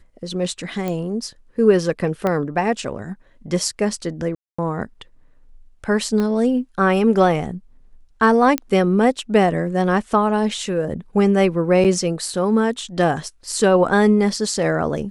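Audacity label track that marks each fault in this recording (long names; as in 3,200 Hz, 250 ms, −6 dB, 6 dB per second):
0.880000	0.880000	click −13 dBFS
2.270000	2.270000	click −10 dBFS
4.350000	4.580000	drop-out 235 ms
6.200000	6.200000	click −12 dBFS
8.580000	8.580000	click −6 dBFS
11.840000	11.850000	drop-out 7.3 ms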